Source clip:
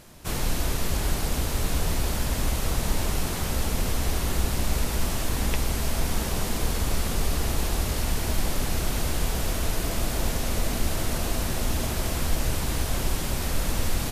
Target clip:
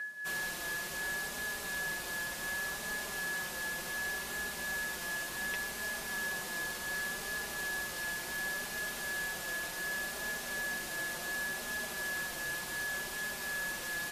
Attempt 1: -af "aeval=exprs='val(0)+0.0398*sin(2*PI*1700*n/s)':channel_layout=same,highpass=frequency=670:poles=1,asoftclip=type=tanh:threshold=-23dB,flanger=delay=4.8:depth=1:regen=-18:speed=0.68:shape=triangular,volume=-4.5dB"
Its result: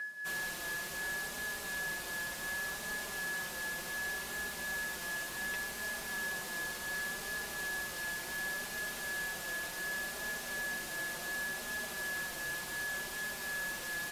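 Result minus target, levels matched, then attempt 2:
soft clipping: distortion +21 dB
-af "aeval=exprs='val(0)+0.0398*sin(2*PI*1700*n/s)':channel_layout=same,highpass=frequency=670:poles=1,asoftclip=type=tanh:threshold=-11dB,flanger=delay=4.8:depth=1:regen=-18:speed=0.68:shape=triangular,volume=-4.5dB"

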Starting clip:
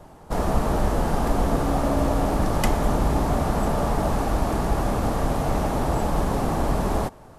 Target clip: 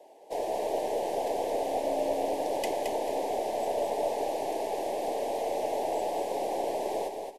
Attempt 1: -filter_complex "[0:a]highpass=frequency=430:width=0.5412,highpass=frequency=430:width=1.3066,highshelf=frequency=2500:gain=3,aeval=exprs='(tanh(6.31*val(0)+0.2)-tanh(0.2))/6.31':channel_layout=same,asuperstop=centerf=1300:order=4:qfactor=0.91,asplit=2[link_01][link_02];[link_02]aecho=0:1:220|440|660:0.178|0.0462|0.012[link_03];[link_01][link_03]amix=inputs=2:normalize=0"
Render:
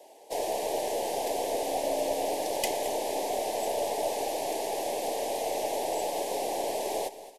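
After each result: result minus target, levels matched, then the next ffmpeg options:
echo-to-direct −9.5 dB; 4,000 Hz band +6.0 dB
-filter_complex "[0:a]highpass=frequency=430:width=0.5412,highpass=frequency=430:width=1.3066,highshelf=frequency=2500:gain=3,aeval=exprs='(tanh(6.31*val(0)+0.2)-tanh(0.2))/6.31':channel_layout=same,asuperstop=centerf=1300:order=4:qfactor=0.91,asplit=2[link_01][link_02];[link_02]aecho=0:1:220|440|660:0.531|0.138|0.0359[link_03];[link_01][link_03]amix=inputs=2:normalize=0"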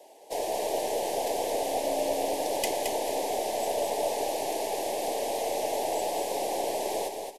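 4,000 Hz band +6.0 dB
-filter_complex "[0:a]highpass=frequency=430:width=0.5412,highpass=frequency=430:width=1.3066,highshelf=frequency=2500:gain=-8,aeval=exprs='(tanh(6.31*val(0)+0.2)-tanh(0.2))/6.31':channel_layout=same,asuperstop=centerf=1300:order=4:qfactor=0.91,asplit=2[link_01][link_02];[link_02]aecho=0:1:220|440|660:0.531|0.138|0.0359[link_03];[link_01][link_03]amix=inputs=2:normalize=0"

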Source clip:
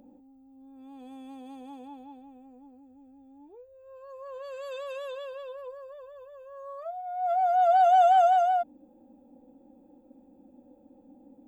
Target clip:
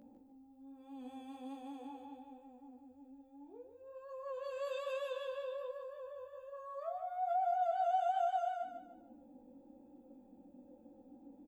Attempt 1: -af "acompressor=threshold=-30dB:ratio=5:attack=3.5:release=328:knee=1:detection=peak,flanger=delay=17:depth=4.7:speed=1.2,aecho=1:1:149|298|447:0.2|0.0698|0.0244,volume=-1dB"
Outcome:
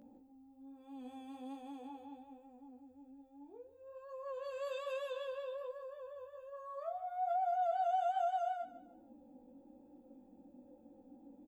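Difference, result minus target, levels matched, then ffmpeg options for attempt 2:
echo-to-direct −6.5 dB
-af "acompressor=threshold=-30dB:ratio=5:attack=3.5:release=328:knee=1:detection=peak,flanger=delay=17:depth=4.7:speed=1.2,aecho=1:1:149|298|447|596:0.422|0.148|0.0517|0.0181,volume=-1dB"

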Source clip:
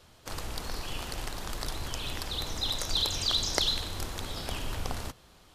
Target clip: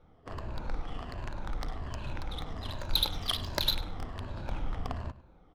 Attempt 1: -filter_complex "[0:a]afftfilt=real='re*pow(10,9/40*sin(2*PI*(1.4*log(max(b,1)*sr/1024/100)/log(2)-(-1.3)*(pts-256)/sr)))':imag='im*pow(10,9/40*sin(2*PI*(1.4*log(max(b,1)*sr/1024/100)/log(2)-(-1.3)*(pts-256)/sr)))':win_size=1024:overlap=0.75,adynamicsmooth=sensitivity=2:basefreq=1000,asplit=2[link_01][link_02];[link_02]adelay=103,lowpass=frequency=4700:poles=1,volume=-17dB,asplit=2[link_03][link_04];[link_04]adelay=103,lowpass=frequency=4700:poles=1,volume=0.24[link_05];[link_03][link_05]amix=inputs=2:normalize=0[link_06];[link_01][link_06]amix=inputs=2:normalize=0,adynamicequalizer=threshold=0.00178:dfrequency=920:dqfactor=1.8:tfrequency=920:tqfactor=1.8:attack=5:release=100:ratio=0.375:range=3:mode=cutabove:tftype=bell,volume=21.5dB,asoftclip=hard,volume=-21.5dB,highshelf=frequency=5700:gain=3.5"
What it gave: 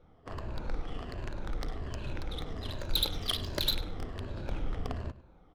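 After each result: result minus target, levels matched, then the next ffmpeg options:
gain into a clipping stage and back: distortion +7 dB; 1,000 Hz band −2.5 dB
-filter_complex "[0:a]afftfilt=real='re*pow(10,9/40*sin(2*PI*(1.4*log(max(b,1)*sr/1024/100)/log(2)-(-1.3)*(pts-256)/sr)))':imag='im*pow(10,9/40*sin(2*PI*(1.4*log(max(b,1)*sr/1024/100)/log(2)-(-1.3)*(pts-256)/sr)))':win_size=1024:overlap=0.75,adynamicsmooth=sensitivity=2:basefreq=1000,asplit=2[link_01][link_02];[link_02]adelay=103,lowpass=frequency=4700:poles=1,volume=-17dB,asplit=2[link_03][link_04];[link_04]adelay=103,lowpass=frequency=4700:poles=1,volume=0.24[link_05];[link_03][link_05]amix=inputs=2:normalize=0[link_06];[link_01][link_06]amix=inputs=2:normalize=0,adynamicequalizer=threshold=0.00178:dfrequency=920:dqfactor=1.8:tfrequency=920:tqfactor=1.8:attack=5:release=100:ratio=0.375:range=3:mode=cutabove:tftype=bell,volume=14.5dB,asoftclip=hard,volume=-14.5dB,highshelf=frequency=5700:gain=3.5"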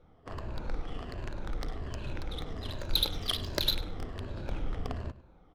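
1,000 Hz band −3.5 dB
-filter_complex "[0:a]afftfilt=real='re*pow(10,9/40*sin(2*PI*(1.4*log(max(b,1)*sr/1024/100)/log(2)-(-1.3)*(pts-256)/sr)))':imag='im*pow(10,9/40*sin(2*PI*(1.4*log(max(b,1)*sr/1024/100)/log(2)-(-1.3)*(pts-256)/sr)))':win_size=1024:overlap=0.75,adynamicsmooth=sensitivity=2:basefreq=1000,asplit=2[link_01][link_02];[link_02]adelay=103,lowpass=frequency=4700:poles=1,volume=-17dB,asplit=2[link_03][link_04];[link_04]adelay=103,lowpass=frequency=4700:poles=1,volume=0.24[link_05];[link_03][link_05]amix=inputs=2:normalize=0[link_06];[link_01][link_06]amix=inputs=2:normalize=0,adynamicequalizer=threshold=0.00178:dfrequency=410:dqfactor=1.8:tfrequency=410:tqfactor=1.8:attack=5:release=100:ratio=0.375:range=3:mode=cutabove:tftype=bell,volume=14.5dB,asoftclip=hard,volume=-14.5dB,highshelf=frequency=5700:gain=3.5"

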